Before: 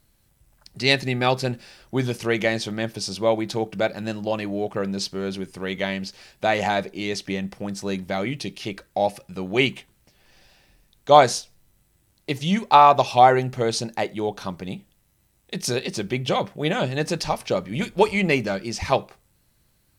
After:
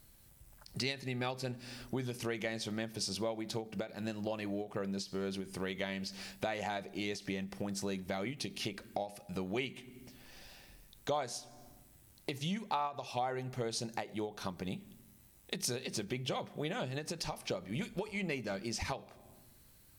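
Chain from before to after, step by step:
on a send at −21 dB: convolution reverb RT60 0.90 s, pre-delay 4 ms
on the sum: downward compressor 5 to 1, threshold −36 dBFS, peak gain reduction 24.5 dB
high-shelf EQ 8,900 Hz +6.5 dB
every ending faded ahead of time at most 200 dB per second

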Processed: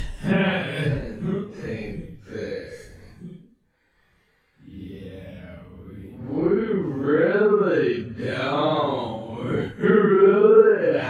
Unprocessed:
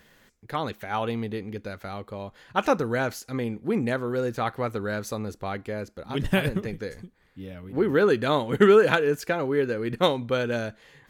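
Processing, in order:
extreme stretch with random phases 4.2×, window 0.05 s, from 0:06.26
treble cut that deepens with the level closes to 1,600 Hz, closed at −13 dBFS

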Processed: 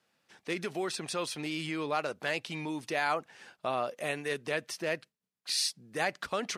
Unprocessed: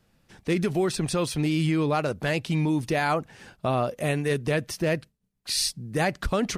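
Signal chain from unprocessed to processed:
meter weighting curve A
level −4.5 dB

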